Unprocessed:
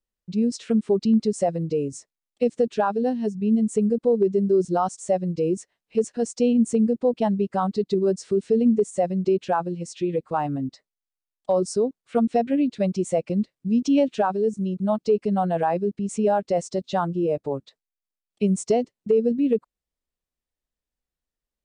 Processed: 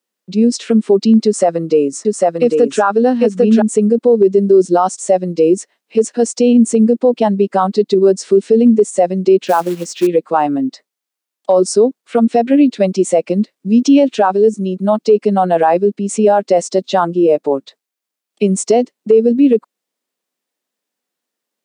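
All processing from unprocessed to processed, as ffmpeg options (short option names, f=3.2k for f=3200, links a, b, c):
-filter_complex "[0:a]asettb=1/sr,asplit=3[a][b][c];[a]atrim=end=1.254[d];[b]atrim=start=1.25:end=3.62,asetpts=PTS-STARTPTS,afade=t=in:d=0.004:c=qsin,afade=t=out:st=2.366:d=0.004:c=qsin,equalizer=f=1.3k:t=o:w=0.65:g=10,aecho=1:1:798:0.668,atrim=end_sample=104517[e];[c]atrim=start=3.616[f];[d][e]acrossfade=d=0.004:c1=hsin:c2=qsin[g];[g][f]acrossfade=d=0.004:c1=qsin:c2=hsin,asettb=1/sr,asplit=3[h][i][j];[h]atrim=end=9.464[k];[i]atrim=start=9.46:end=10.07,asetpts=PTS-STARTPTS,afade=t=in:d=0.004:c=qsin,afade=t=out:st=0.606:d=0.004:c=qsin,lowpass=f=8.5k:w=0.5412,lowpass=f=8.5k:w=1.3066,acrusher=bits=5:mode=log:mix=0:aa=0.000001[l];[j]atrim=start=10.066[m];[k][l]acrossfade=d=0.004:c1=hsin:c2=qsin[n];[n][m]acrossfade=d=0.004:c1=qsin:c2=hsin,highpass=f=220:w=0.5412,highpass=f=220:w=1.3066,alimiter=level_in=14dB:limit=-1dB:release=50:level=0:latency=1,volume=-1.5dB"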